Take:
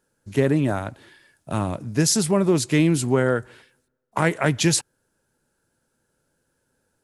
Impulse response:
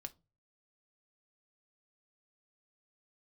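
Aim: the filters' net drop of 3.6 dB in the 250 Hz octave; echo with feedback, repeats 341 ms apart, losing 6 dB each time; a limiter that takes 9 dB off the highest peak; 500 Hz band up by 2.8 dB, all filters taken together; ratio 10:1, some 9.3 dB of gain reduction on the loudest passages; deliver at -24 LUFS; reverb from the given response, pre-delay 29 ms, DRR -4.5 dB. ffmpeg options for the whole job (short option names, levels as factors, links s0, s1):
-filter_complex "[0:a]equalizer=f=250:t=o:g=-8.5,equalizer=f=500:t=o:g=6.5,acompressor=threshold=0.0708:ratio=10,alimiter=limit=0.112:level=0:latency=1,aecho=1:1:341|682|1023|1364|1705|2046:0.501|0.251|0.125|0.0626|0.0313|0.0157,asplit=2[s0][s1];[1:a]atrim=start_sample=2205,adelay=29[s2];[s1][s2]afir=irnorm=-1:irlink=0,volume=2.82[s3];[s0][s3]amix=inputs=2:normalize=0,volume=1.12"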